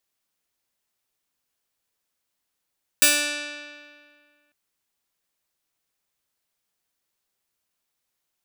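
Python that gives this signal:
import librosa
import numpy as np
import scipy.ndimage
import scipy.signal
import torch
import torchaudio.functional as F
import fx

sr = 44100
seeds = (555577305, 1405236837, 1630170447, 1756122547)

y = fx.pluck(sr, length_s=1.5, note=62, decay_s=1.97, pick=0.28, brightness='bright')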